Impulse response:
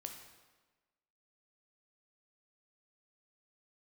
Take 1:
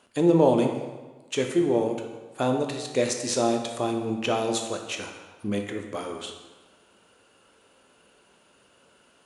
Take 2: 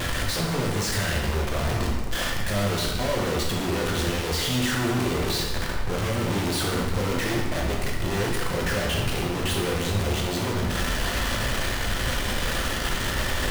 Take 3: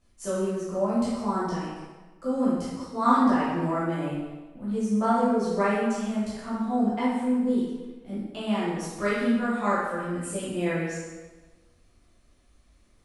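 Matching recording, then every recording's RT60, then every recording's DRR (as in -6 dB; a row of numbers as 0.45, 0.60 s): 1; 1.3, 1.3, 1.3 s; 3.5, -2.0, -10.5 dB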